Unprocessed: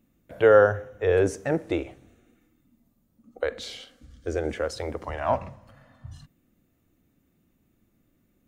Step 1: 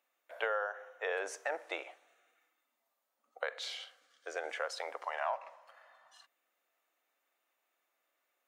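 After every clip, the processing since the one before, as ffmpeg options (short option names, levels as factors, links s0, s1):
-af "highpass=f=680:w=0.5412,highpass=f=680:w=1.3066,highshelf=f=4900:g=-8,acompressor=threshold=0.0282:ratio=8"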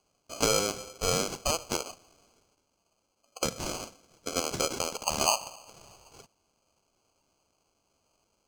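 -af "acrusher=samples=24:mix=1:aa=0.000001,equalizer=f=6200:w=0.94:g=14.5,volume=2"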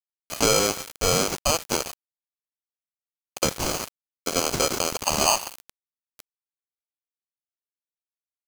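-filter_complex "[0:a]asplit=2[s0][s1];[s1]alimiter=limit=0.158:level=0:latency=1:release=14,volume=1[s2];[s0][s2]amix=inputs=2:normalize=0,acrusher=bits=4:mix=0:aa=0.000001,volume=1.19"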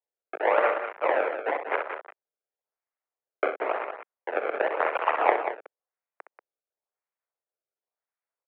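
-af "acrusher=samples=28:mix=1:aa=0.000001:lfo=1:lforange=44.8:lforate=0.95,aecho=1:1:64.14|186.6:0.355|0.355,highpass=f=380:t=q:w=0.5412,highpass=f=380:t=q:w=1.307,lowpass=f=2300:t=q:w=0.5176,lowpass=f=2300:t=q:w=0.7071,lowpass=f=2300:t=q:w=1.932,afreqshift=65"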